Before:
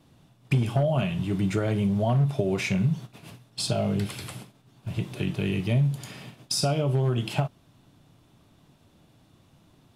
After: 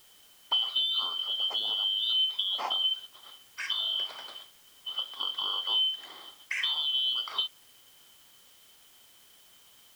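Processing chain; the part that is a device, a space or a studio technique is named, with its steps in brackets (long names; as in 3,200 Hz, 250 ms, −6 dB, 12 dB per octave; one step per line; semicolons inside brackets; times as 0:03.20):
split-band scrambled radio (band-splitting scrambler in four parts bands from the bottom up 2413; band-pass filter 380–3,000 Hz; white noise bed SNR 26 dB)
level −2 dB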